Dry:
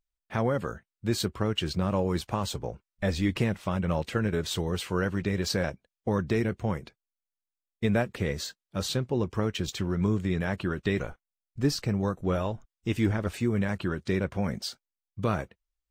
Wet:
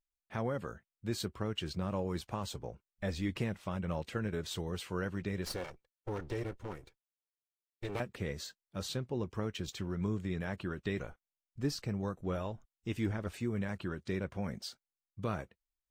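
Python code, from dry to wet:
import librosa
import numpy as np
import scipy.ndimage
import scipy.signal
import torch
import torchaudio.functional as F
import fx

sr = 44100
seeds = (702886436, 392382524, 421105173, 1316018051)

y = fx.lower_of_two(x, sr, delay_ms=2.2, at=(5.45, 8.0))
y = y * 10.0 ** (-8.5 / 20.0)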